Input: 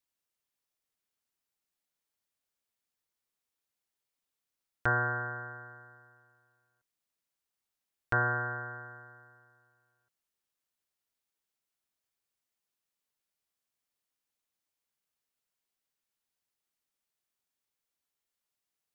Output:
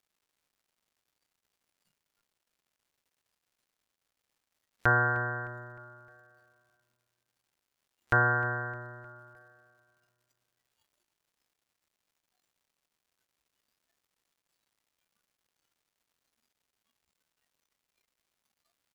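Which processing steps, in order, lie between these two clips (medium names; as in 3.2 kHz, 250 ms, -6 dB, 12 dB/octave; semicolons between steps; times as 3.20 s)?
crackle 360 per s -55 dBFS; spectral noise reduction 14 dB; feedback delay 307 ms, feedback 49%, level -18 dB; trim +4 dB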